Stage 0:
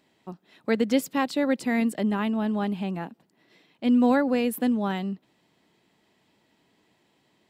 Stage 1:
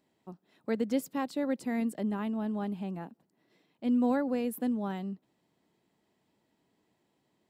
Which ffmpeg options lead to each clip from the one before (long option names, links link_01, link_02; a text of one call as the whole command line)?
ffmpeg -i in.wav -af "equalizer=frequency=2800:width_type=o:width=2.2:gain=-6.5,volume=-6.5dB" out.wav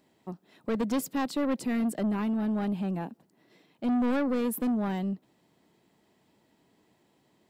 ffmpeg -i in.wav -af "asoftclip=type=tanh:threshold=-31dB,volume=7.5dB" out.wav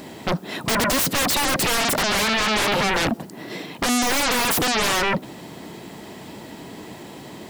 ffmpeg -i in.wav -af "aeval=exprs='0.0668*sin(PI/2*8.91*val(0)/0.0668)':channel_layout=same,volume=6dB" out.wav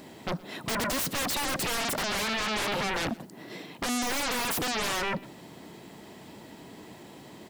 ffmpeg -i in.wav -af "aecho=1:1:119:0.0794,volume=-9dB" out.wav